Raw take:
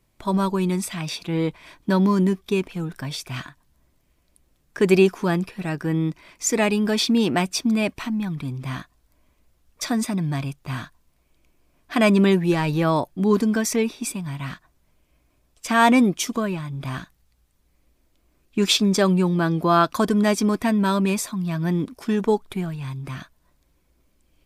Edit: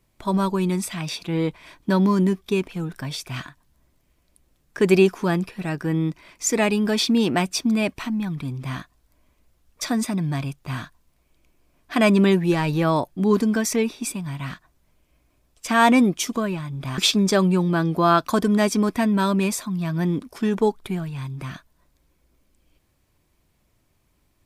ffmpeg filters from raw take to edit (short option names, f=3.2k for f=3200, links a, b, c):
-filter_complex "[0:a]asplit=2[a][b];[a]atrim=end=16.982[c];[b]atrim=start=18.638[d];[c][d]acrossfade=d=0.004:c1=hsin:c2=hsin"